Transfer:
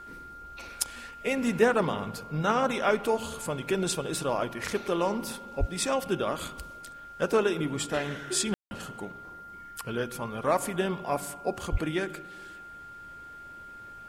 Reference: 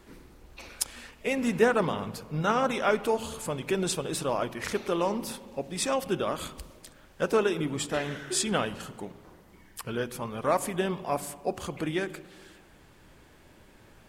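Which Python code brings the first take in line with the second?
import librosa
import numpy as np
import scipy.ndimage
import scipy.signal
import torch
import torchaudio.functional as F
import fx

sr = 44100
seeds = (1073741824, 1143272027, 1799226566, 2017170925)

y = fx.notch(x, sr, hz=1400.0, q=30.0)
y = fx.highpass(y, sr, hz=140.0, slope=24, at=(5.59, 5.71), fade=0.02)
y = fx.highpass(y, sr, hz=140.0, slope=24, at=(11.71, 11.83), fade=0.02)
y = fx.fix_ambience(y, sr, seeds[0], print_start_s=13.24, print_end_s=13.74, start_s=8.54, end_s=8.71)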